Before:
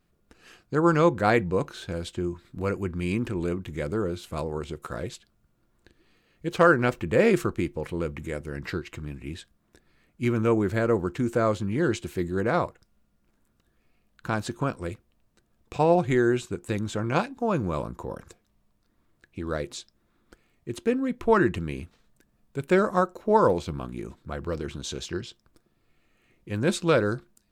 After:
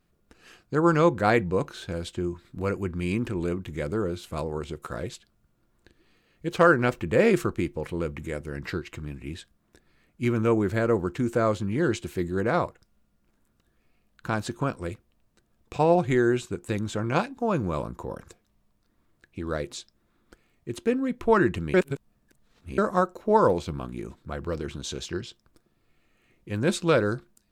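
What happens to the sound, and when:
21.74–22.78 s: reverse

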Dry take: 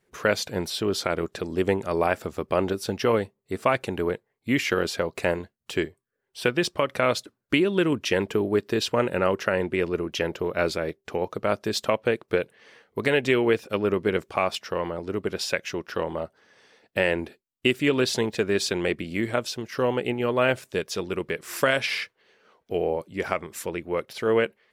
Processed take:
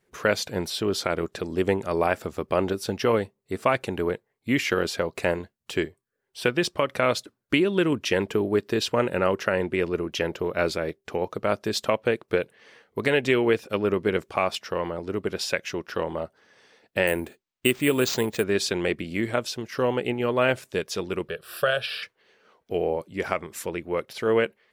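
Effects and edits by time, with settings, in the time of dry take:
17.07–18.44 s: careless resampling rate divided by 4×, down none, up hold
21.28–22.03 s: static phaser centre 1.4 kHz, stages 8

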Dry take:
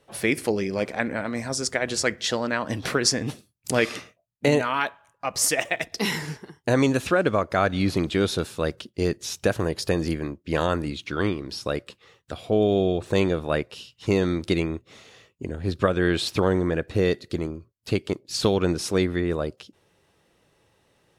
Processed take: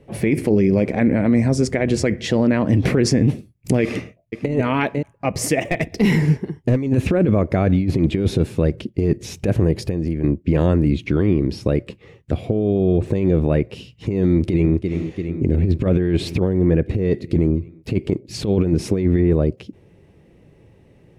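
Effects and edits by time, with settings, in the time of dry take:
3.82–4.52 s: echo throw 500 ms, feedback 15%, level -16.5 dB
5.63–6.77 s: hard clipper -21 dBFS
9.83–10.24 s: compression 5:1, threshold -35 dBFS
14.26–14.76 s: echo throw 340 ms, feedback 75%, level -16 dB
whole clip: FFT filter 160 Hz 0 dB, 370 Hz -4 dB, 1.4 kHz -21 dB, 2.2 kHz -11 dB, 3.6 kHz -22 dB; compressor with a negative ratio -28 dBFS, ratio -0.5; loudness maximiser +22.5 dB; trim -6.5 dB

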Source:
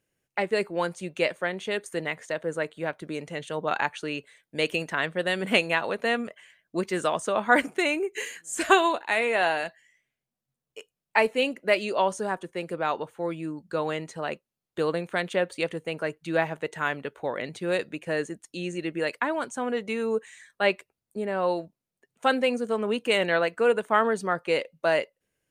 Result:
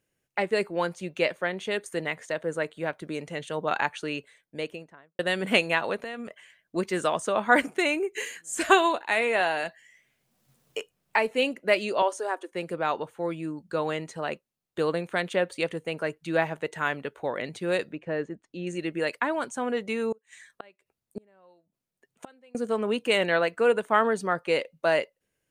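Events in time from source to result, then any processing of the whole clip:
0.75–1.61 s: peaking EQ 8.5 kHz -5.5 dB 0.56 oct
4.12–5.19 s: studio fade out
5.96–6.76 s: compression, threshold -33 dBFS
9.40–11.31 s: three bands compressed up and down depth 70%
12.02–12.52 s: elliptic high-pass 290 Hz
17.92–18.67 s: tape spacing loss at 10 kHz 29 dB
20.12–22.55 s: inverted gate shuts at -24 dBFS, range -32 dB

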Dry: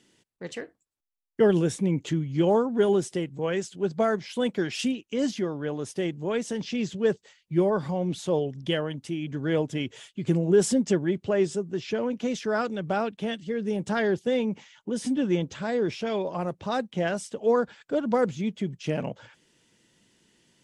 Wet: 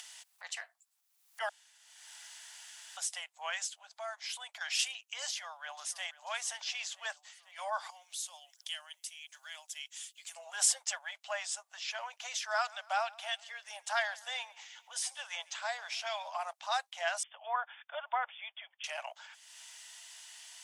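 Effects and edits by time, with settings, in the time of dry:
1.49–2.97 s: room tone
3.69–4.61 s: compression 2.5:1, threshold -36 dBFS
5.28–6.09 s: echo throw 490 ms, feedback 65%, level -17 dB
7.90–10.36 s: pre-emphasis filter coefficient 0.9
12.37–16.53 s: feedback delay 140 ms, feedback 51%, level -23 dB
17.23–18.84 s: brick-wall FIR low-pass 3.6 kHz
whole clip: treble shelf 3.6 kHz +9 dB; upward compressor, threshold -35 dBFS; steep high-pass 670 Hz 72 dB/octave; trim -3 dB

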